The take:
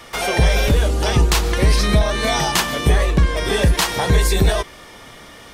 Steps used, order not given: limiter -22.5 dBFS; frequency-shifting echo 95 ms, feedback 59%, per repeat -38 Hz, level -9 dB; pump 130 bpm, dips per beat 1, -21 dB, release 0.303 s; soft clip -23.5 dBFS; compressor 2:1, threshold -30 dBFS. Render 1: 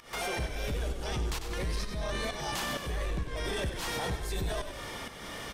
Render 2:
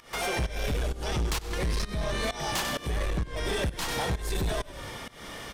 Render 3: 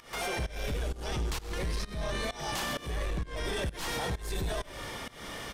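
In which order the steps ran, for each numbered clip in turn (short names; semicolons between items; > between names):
limiter > pump > compressor > frequency-shifting echo > soft clip; compressor > frequency-shifting echo > pump > soft clip > limiter; limiter > frequency-shifting echo > soft clip > pump > compressor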